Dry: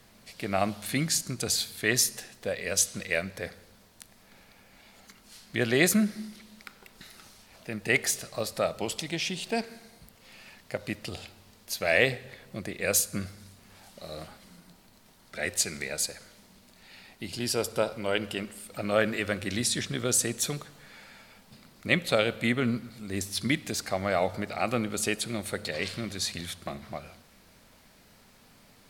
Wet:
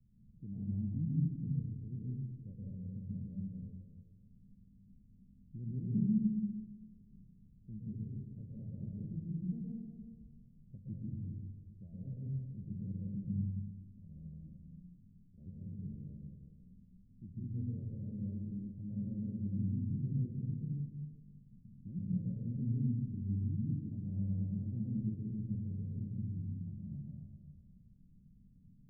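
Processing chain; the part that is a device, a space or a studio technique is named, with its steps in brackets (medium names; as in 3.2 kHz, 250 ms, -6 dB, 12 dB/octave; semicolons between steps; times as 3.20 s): club heard from the street (peak limiter -17 dBFS, peak gain reduction 11.5 dB; low-pass 190 Hz 24 dB/octave; reverberation RT60 1.2 s, pre-delay 114 ms, DRR -4.5 dB); repeats whose band climbs or falls 378 ms, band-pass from 470 Hz, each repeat 1.4 oct, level -11.5 dB; trim -5 dB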